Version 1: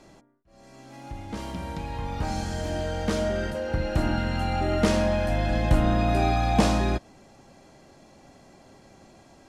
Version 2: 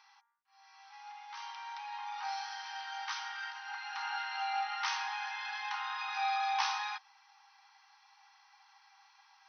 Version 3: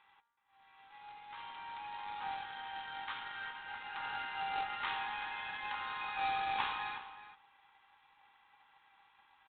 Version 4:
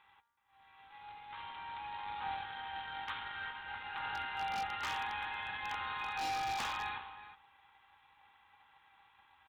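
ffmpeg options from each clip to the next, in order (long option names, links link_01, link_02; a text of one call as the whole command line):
ffmpeg -i in.wav -af "afftfilt=real='re*between(b*sr/4096,770,6200)':imag='im*between(b*sr/4096,770,6200)':win_size=4096:overlap=0.75,volume=-3.5dB" out.wav
ffmpeg -i in.wav -filter_complex "[0:a]aresample=8000,acrusher=bits=2:mode=log:mix=0:aa=0.000001,aresample=44100,asplit=2[link_01][link_02];[link_02]adelay=373.2,volume=-12dB,highshelf=frequency=4000:gain=-8.4[link_03];[link_01][link_03]amix=inputs=2:normalize=0,volume=-3dB" out.wav
ffmpeg -i in.wav -af "equalizer=frequency=76:width=1.2:gain=10.5,aeval=exprs='0.0251*(abs(mod(val(0)/0.0251+3,4)-2)-1)':channel_layout=same,volume=1dB" out.wav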